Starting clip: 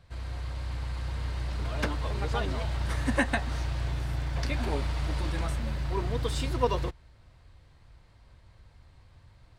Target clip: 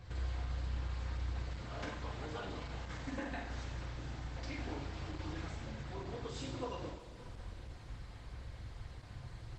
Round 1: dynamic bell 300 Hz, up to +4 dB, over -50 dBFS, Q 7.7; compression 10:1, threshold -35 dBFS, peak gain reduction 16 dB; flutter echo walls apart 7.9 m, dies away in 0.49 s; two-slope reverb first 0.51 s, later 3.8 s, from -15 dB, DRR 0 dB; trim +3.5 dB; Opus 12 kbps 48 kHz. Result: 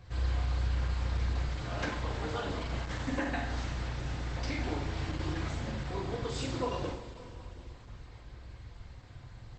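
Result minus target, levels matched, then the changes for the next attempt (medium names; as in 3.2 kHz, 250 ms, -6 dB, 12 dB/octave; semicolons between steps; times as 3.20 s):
compression: peak gain reduction -7.5 dB
change: compression 10:1, threshold -43.5 dBFS, peak gain reduction 23.5 dB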